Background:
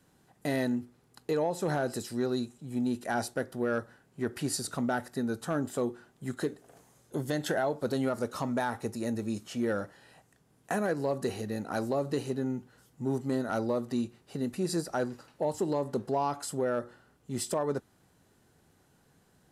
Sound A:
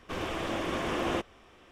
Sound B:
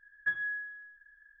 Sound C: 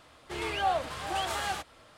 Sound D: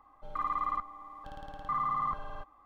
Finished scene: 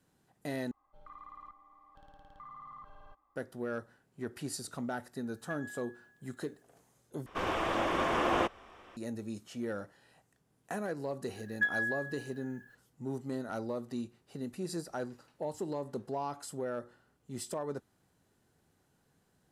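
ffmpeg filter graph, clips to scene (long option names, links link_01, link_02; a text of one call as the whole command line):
ffmpeg -i bed.wav -i cue0.wav -i cue1.wav -i cue2.wav -i cue3.wav -filter_complex "[2:a]asplit=2[link_01][link_02];[0:a]volume=-7dB[link_03];[4:a]acompressor=threshold=-33dB:ratio=6:attack=3.2:release=140:knee=1:detection=peak[link_04];[link_01]aemphasis=mode=production:type=riaa[link_05];[1:a]equalizer=frequency=1000:width=0.64:gain=8[link_06];[link_02]crystalizer=i=9:c=0[link_07];[link_03]asplit=3[link_08][link_09][link_10];[link_08]atrim=end=0.714[link_11];[link_04]atrim=end=2.65,asetpts=PTS-STARTPTS,volume=-13dB[link_12];[link_09]atrim=start=3.356:end=7.264[link_13];[link_06]atrim=end=1.71,asetpts=PTS-STARTPTS,volume=-3dB[link_14];[link_10]atrim=start=8.966[link_15];[link_05]atrim=end=1.4,asetpts=PTS-STARTPTS,volume=-15dB,afade=type=in:duration=0.004:curve=hsin,afade=type=out:start_time=1.396:duration=0.004:curve=hsin,adelay=5230[link_16];[link_07]atrim=end=1.4,asetpts=PTS-STARTPTS,volume=-6.5dB,afade=type=in:duration=0.004:curve=hsin,afade=type=out:start_time=1.396:duration=0.004:curve=hsin,adelay=11350[link_17];[link_11][link_12]acrossfade=duration=0.004:curve1=hsin:curve2=hsin[link_18];[link_18][link_13]acrossfade=duration=0.004:curve1=hsin:curve2=hsin[link_19];[link_19][link_14]acrossfade=duration=0.004:curve1=hsin:curve2=hsin[link_20];[link_20][link_15]acrossfade=duration=0.004:curve1=hsin:curve2=hsin[link_21];[link_21][link_16][link_17]amix=inputs=3:normalize=0" out.wav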